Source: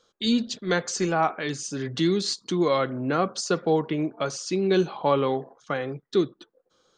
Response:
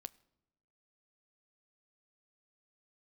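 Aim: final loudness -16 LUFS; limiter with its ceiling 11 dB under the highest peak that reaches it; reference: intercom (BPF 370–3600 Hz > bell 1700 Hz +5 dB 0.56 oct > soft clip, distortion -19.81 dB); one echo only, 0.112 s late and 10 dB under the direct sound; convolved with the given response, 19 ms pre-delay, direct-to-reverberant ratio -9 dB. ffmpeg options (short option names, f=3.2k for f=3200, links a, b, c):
-filter_complex "[0:a]alimiter=limit=-20.5dB:level=0:latency=1,aecho=1:1:112:0.316,asplit=2[a][b];[1:a]atrim=start_sample=2205,adelay=19[c];[b][c]afir=irnorm=-1:irlink=0,volume=14dB[d];[a][d]amix=inputs=2:normalize=0,highpass=370,lowpass=3.6k,equalizer=f=1.7k:t=o:w=0.56:g=5,asoftclip=threshold=-13.5dB,volume=8.5dB"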